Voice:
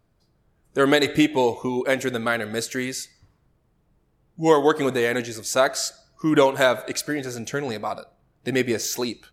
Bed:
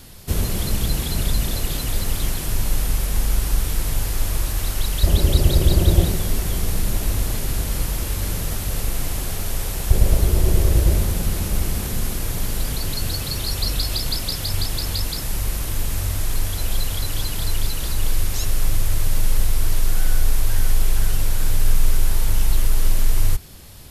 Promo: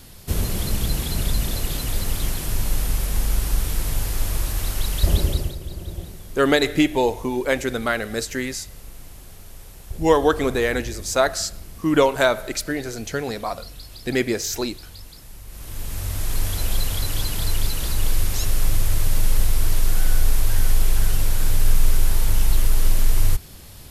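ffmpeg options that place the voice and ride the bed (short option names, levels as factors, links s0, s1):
-filter_complex "[0:a]adelay=5600,volume=1.06[s0];[1:a]volume=5.96,afade=t=out:st=5.13:d=0.43:silence=0.16788,afade=t=in:st=15.47:d=1.02:silence=0.141254[s1];[s0][s1]amix=inputs=2:normalize=0"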